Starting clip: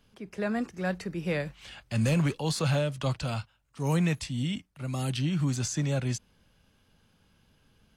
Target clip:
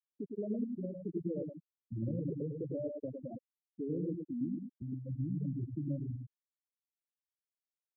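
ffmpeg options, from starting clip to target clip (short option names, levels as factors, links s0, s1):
-filter_complex "[0:a]asettb=1/sr,asplit=3[s0][s1][s2];[s0]atrim=end=2.554[s3];[s1]atrim=start=2.55:end=4.82,asetpts=PTS-STARTPTS,afade=t=in:d=0.004:c=qsin,afade=t=out:st=2.266:d=0.004:c=qsin,highpass=230[s4];[s2]atrim=start=4.816[s5];[s3][s4]acrossfade=d=0.004:c1=hsin:c2=qsin[s6];[s6][s5]acrossfade=d=0.004:c1=qsin:c2=hsin,volume=33.5,asoftclip=hard,volume=0.0299,equalizer=f=340:t=o:w=0.92:g=13,bandreject=f=370:w=12,acompressor=threshold=0.00398:ratio=2,lowpass=f=1600:p=1,aecho=1:1:106|212|318|424|530:0.708|0.269|0.102|0.0388|0.0148,afftfilt=real='re*gte(hypot(re,im),0.0447)':imag='im*gte(hypot(re,im),0.0447)':win_size=1024:overlap=0.75,volume=1.5"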